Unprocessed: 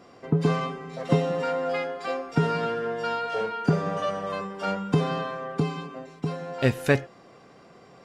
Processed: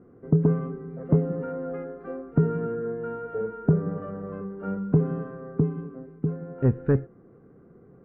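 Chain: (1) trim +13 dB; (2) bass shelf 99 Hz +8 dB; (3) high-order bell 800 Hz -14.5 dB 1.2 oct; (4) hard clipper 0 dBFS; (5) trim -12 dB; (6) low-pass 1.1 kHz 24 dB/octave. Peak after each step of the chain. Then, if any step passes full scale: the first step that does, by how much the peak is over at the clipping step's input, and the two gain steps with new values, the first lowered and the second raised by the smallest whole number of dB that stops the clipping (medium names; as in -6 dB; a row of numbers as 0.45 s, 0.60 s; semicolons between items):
+6.0 dBFS, +7.5 dBFS, +6.0 dBFS, 0.0 dBFS, -12.0 dBFS, -11.5 dBFS; step 1, 6.0 dB; step 1 +7 dB, step 5 -6 dB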